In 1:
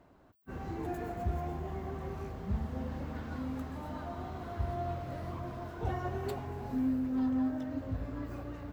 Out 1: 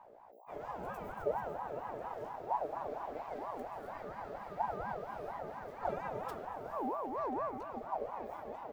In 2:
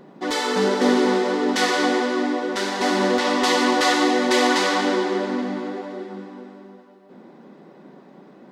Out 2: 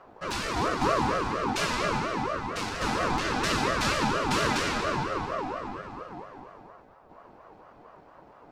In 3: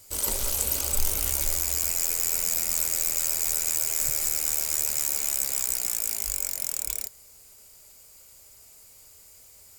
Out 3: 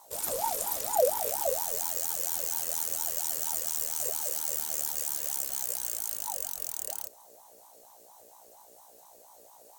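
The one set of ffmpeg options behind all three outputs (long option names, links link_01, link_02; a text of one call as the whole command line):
ffmpeg -i in.wav -filter_complex "[0:a]acrossover=split=170|3300[link_01][link_02][link_03];[link_01]acontrast=89[link_04];[link_04][link_02][link_03]amix=inputs=3:normalize=0,highshelf=frequency=9700:gain=4.5,aeval=exprs='val(0)+0.00355*(sin(2*PI*60*n/s)+sin(2*PI*2*60*n/s)/2+sin(2*PI*3*60*n/s)/3+sin(2*PI*4*60*n/s)/4+sin(2*PI*5*60*n/s)/5)':channel_layout=same,aeval=exprs='val(0)*sin(2*PI*710*n/s+710*0.3/4.3*sin(2*PI*4.3*n/s))':channel_layout=same,volume=-5.5dB" out.wav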